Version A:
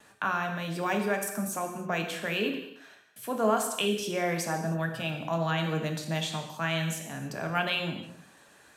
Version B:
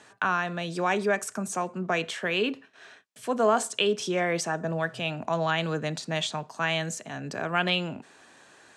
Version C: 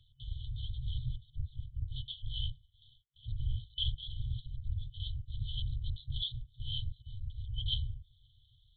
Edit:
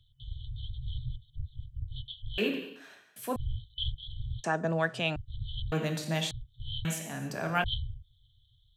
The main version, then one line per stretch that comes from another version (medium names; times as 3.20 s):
C
2.38–3.36 s: from A
4.44–5.16 s: from B
5.72–6.31 s: from A
6.85–7.64 s: from A